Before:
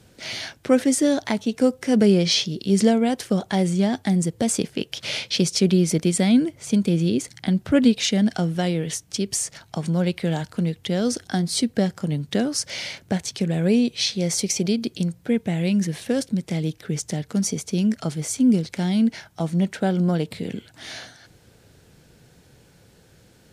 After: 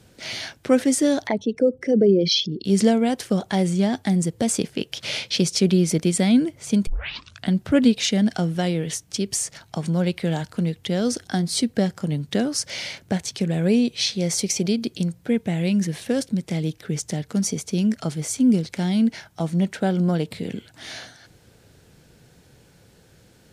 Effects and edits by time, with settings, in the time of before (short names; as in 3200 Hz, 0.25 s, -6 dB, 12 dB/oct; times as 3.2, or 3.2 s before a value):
1.27–2.65 formant sharpening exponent 2
6.87 tape start 0.62 s